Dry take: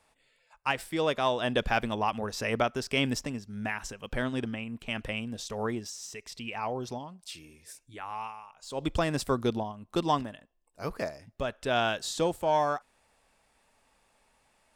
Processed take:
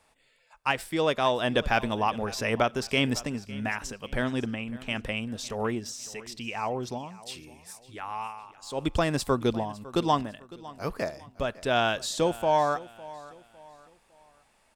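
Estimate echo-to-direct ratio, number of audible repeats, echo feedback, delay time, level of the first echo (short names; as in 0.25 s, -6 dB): -18.5 dB, 2, 37%, 0.555 s, -19.0 dB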